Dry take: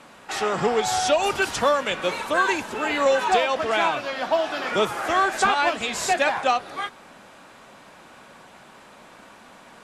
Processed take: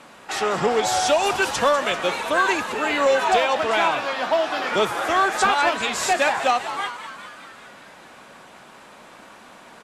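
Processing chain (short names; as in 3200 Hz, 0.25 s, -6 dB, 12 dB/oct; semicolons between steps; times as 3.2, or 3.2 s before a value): low shelf 150 Hz -3.5 dB; in parallel at -12 dB: wavefolder -17 dBFS; on the sum: frequency-shifting echo 0.196 s, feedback 64%, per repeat +120 Hz, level -12.5 dB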